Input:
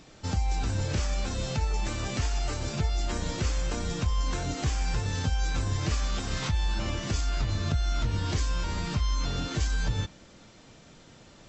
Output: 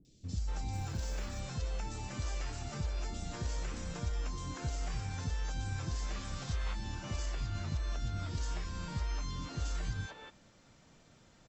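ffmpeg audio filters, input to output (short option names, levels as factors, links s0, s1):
-filter_complex "[0:a]acrossover=split=380|3400[s0][s1][s2];[s2]adelay=50[s3];[s1]adelay=240[s4];[s0][s4][s3]amix=inputs=3:normalize=0,asettb=1/sr,asplit=3[s5][s6][s7];[s5]atrim=end=0.734[s8];[s6]atrim=start=0.73:end=1.4,asetpts=PTS-STARTPTS,afade=t=in:d=0.004:c=qsin,afade=t=out:st=0.666:d=0.004:c=qsin,acrusher=bits=8:mode=log:mix=0:aa=0.000001[s9];[s7]atrim=start=1.396[s10];[s8][s9]acrossfade=d=0.004:c1=hsin:c2=qsin[s11];[s11][s10]acrossfade=d=0.004:c1=qsin:c2=hsin,volume=0.376"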